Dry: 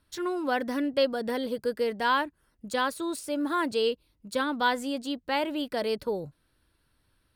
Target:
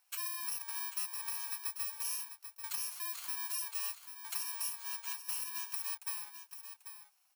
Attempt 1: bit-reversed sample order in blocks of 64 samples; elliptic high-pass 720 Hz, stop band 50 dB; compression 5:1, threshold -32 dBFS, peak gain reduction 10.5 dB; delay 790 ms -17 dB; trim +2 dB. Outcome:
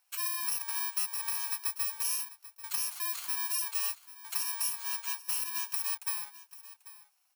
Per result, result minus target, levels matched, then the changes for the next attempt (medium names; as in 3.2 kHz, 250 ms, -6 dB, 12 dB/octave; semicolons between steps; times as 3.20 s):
compression: peak gain reduction -6 dB; echo-to-direct -7 dB
change: compression 5:1, threshold -39.5 dBFS, peak gain reduction 16.5 dB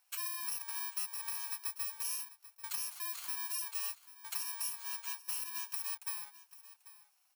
echo-to-direct -7 dB
change: delay 790 ms -10 dB